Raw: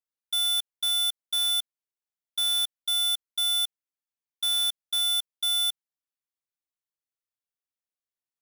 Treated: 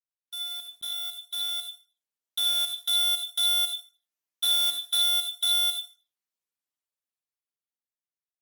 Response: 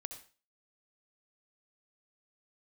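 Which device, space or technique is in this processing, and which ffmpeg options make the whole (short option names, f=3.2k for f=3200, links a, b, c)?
far-field microphone of a smart speaker: -filter_complex "[1:a]atrim=start_sample=2205[a];[0:a][a]afir=irnorm=-1:irlink=0,highpass=150,dynaudnorm=f=320:g=13:m=10.5dB,volume=-5.5dB" -ar 48000 -c:a libopus -b:a 16k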